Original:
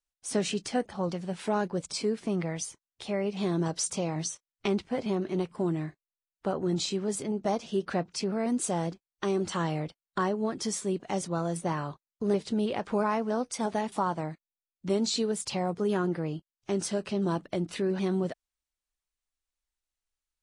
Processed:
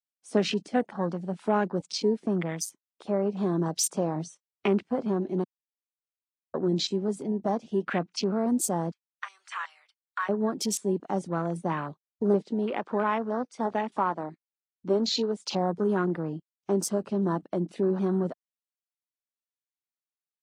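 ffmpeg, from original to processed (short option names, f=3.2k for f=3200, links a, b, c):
-filter_complex "[0:a]asettb=1/sr,asplit=3[a][b][c];[a]atrim=end=7.764[d];[b]atrim=start=7.76:end=8.4,asetpts=PTS-STARTPTS,afade=t=in:d=0.004:c=qsin,afade=t=out:st=0.636:d=0.004:c=qsin,equalizer=f=2.3k:w=1.4:g=5.5[e];[c]atrim=start=8.396[f];[d][e]acrossfade=d=0.004:c1=hsin:c2=qsin[g];[g][f]acrossfade=d=0.004:c1=qsin:c2=hsin,asettb=1/sr,asplit=3[h][i][j];[h]atrim=end=8.914[k];[i]atrim=start=8.91:end=10.29,asetpts=PTS-STARTPTS,afade=t=in:d=0.004:c=qsin,afade=t=out:st=1.376:d=0.004:c=qsin,highpass=f=1.2k:w=0.5412,highpass=f=1.2k:w=1.3066[l];[j]atrim=start=10.286[m];[k][l]acrossfade=d=0.004:c1=hsin:c2=qsin[n];[n][m]acrossfade=d=0.004:c1=qsin:c2=hsin,asettb=1/sr,asplit=3[o][p][q];[o]atrim=end=12.424[r];[p]atrim=start=12.42:end=15.45,asetpts=PTS-STARTPTS,afade=t=in:d=0.004:c=qsin,afade=t=out:st=3.026:d=0.004:c=qsin,highpass=230,lowpass=6.6k[s];[q]atrim=start=15.446[t];[r][s]acrossfade=d=0.004:c1=hsin:c2=qsin[u];[u][t]acrossfade=d=0.004:c1=qsin:c2=hsin,asplit=3[v][w][x];[v]atrim=end=5.44,asetpts=PTS-STARTPTS,afade=t=out:st=5.436:d=0.004:c=hsin[y];[w]atrim=start=5.44:end=6.54,asetpts=PTS-STARTPTS,volume=0[z];[x]atrim=start=6.54,asetpts=PTS-STARTPTS,afade=t=in:d=0.004:c=hsin[aa];[y][z][aa]concat=n=3:v=0:a=1,highpass=f=170:w=0.5412,highpass=f=170:w=1.3066,afwtdn=0.01,adynamicequalizer=threshold=0.00794:dfrequency=530:dqfactor=0.84:tfrequency=530:tqfactor=0.84:attack=5:release=100:ratio=0.375:range=3:mode=cutabove:tftype=bell,volume=4.5dB"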